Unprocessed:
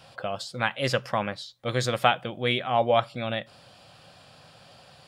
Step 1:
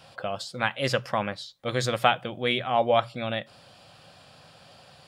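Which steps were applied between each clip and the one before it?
notches 60/120 Hz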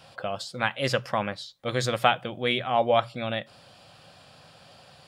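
nothing audible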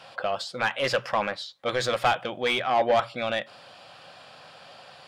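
overdrive pedal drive 21 dB, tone 2600 Hz, clips at -4.5 dBFS; gain -7 dB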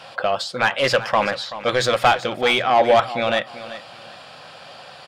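feedback echo 0.382 s, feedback 24%, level -14 dB; gain +7 dB

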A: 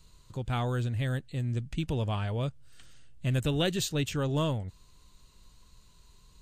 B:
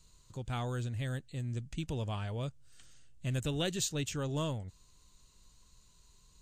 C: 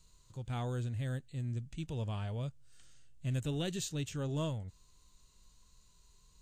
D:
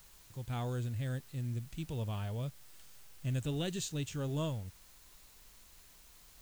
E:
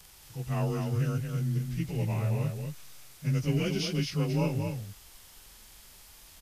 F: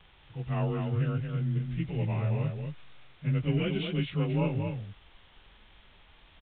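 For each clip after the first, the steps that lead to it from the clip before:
bell 6800 Hz +7.5 dB 0.89 oct; gain -6 dB
harmonic-percussive split percussive -7 dB
added noise white -61 dBFS
inharmonic rescaling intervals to 91%; echo 0.225 s -5.5 dB; gain +7.5 dB
downsampling 8000 Hz

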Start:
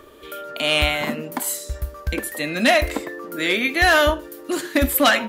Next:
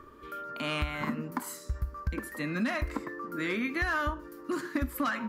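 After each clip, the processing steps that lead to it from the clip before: EQ curve 230 Hz 0 dB, 700 Hz -13 dB, 1100 Hz +2 dB, 3500 Hz -16 dB, 4900 Hz -9 dB, 8400 Hz -15 dB; compressor 6:1, threshold -25 dBFS, peak gain reduction 10 dB; gain -2 dB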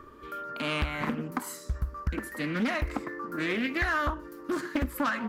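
Doppler distortion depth 0.56 ms; gain +2 dB

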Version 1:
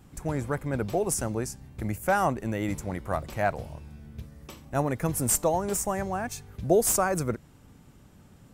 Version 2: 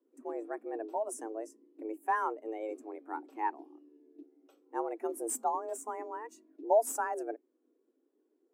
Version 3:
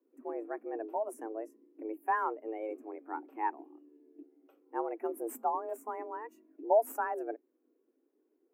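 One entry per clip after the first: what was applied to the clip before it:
frequency shift +220 Hz; spectral expander 1.5:1; gain -5.5 dB
band shelf 5700 Hz -15 dB

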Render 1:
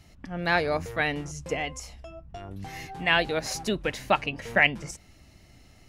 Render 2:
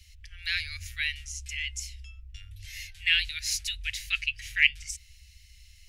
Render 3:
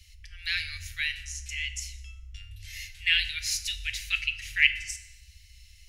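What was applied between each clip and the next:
inverse Chebyshev band-stop 170–1000 Hz, stop band 50 dB; gain +4 dB
FDN reverb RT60 1 s, high-frequency decay 0.75×, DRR 8 dB

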